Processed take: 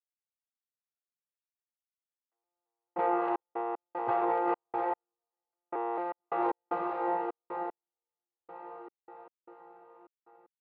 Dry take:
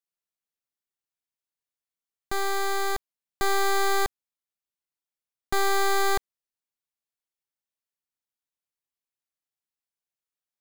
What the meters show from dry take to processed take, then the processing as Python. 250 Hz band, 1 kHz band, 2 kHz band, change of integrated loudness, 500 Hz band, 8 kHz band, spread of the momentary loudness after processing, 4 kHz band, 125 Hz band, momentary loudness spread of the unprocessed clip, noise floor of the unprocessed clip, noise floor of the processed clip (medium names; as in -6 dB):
+3.0 dB, -1.5 dB, -15.5 dB, -6.0 dB, -3.0 dB, under -40 dB, 17 LU, under -25 dB, -10.5 dB, 7 LU, under -85 dBFS, under -85 dBFS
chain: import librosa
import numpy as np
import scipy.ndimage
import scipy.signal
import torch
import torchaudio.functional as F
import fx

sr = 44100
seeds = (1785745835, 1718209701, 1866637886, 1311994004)

y = fx.vocoder_arp(x, sr, chord='bare fifth', root=46, every_ms=221)
y = fx.leveller(y, sr, passes=5)
y = fx.env_lowpass_down(y, sr, base_hz=960.0, full_db=-18.0)
y = scipy.signal.sosfilt(scipy.signal.butter(2, 630.0, 'highpass', fs=sr, output='sos'), y)
y = fx.echo_diffused(y, sr, ms=551, feedback_pct=56, wet_db=-6.5)
y = fx.over_compress(y, sr, threshold_db=-30.0, ratio=-1.0)
y = scipy.ndimage.gaussian_filter1d(y, 3.0, mode='constant')
y = fx.step_gate(y, sr, bpm=76, pattern='.xx.x.xxx.x...', floor_db=-60.0, edge_ms=4.5)